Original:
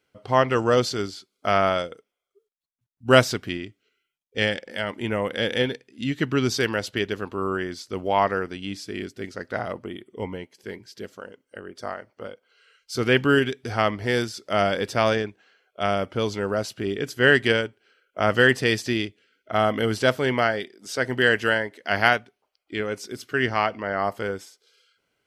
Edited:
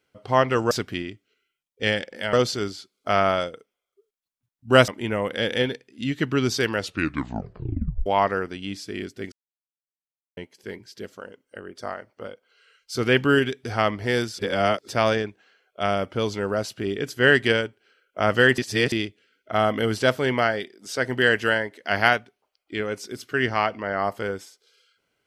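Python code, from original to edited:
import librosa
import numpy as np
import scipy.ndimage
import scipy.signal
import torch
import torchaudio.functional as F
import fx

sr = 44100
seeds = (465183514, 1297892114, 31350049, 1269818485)

y = fx.edit(x, sr, fx.move(start_s=3.26, length_s=1.62, to_s=0.71),
    fx.tape_stop(start_s=6.77, length_s=1.29),
    fx.silence(start_s=9.32, length_s=1.05),
    fx.reverse_span(start_s=14.39, length_s=0.49),
    fx.reverse_span(start_s=18.58, length_s=0.34), tone=tone)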